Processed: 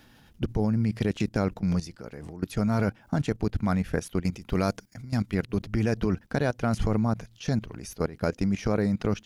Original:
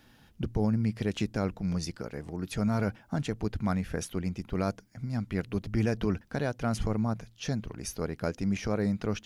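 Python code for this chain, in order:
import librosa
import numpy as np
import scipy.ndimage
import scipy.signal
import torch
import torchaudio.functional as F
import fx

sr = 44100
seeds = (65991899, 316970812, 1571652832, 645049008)

y = fx.high_shelf(x, sr, hz=2700.0, db=6.0, at=(4.22, 5.35))
y = fx.level_steps(y, sr, step_db=16)
y = y * 10.0 ** (8.0 / 20.0)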